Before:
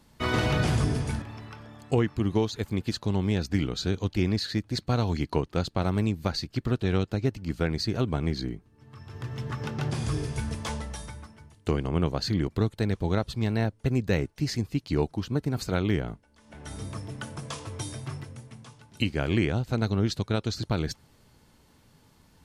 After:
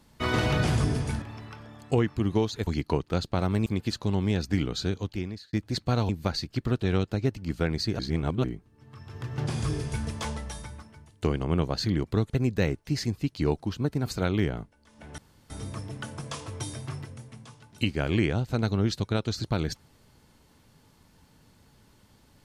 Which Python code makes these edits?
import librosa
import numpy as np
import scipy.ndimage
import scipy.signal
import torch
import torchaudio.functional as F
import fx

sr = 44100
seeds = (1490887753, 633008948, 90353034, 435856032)

y = fx.edit(x, sr, fx.fade_out_span(start_s=3.81, length_s=0.73),
    fx.move(start_s=5.1, length_s=0.99, to_s=2.67),
    fx.reverse_span(start_s=7.99, length_s=0.45),
    fx.cut(start_s=9.38, length_s=0.44),
    fx.cut(start_s=12.74, length_s=1.07),
    fx.insert_room_tone(at_s=16.69, length_s=0.32), tone=tone)